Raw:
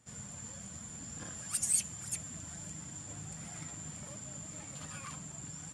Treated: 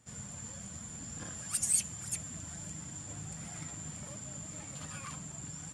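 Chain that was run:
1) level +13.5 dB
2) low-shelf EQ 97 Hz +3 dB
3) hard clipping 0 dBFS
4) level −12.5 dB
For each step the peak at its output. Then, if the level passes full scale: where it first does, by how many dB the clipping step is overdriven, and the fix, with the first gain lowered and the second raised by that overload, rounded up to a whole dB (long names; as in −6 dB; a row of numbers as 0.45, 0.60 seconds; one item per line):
−2.5, −2.5, −2.5, −15.0 dBFS
no step passes full scale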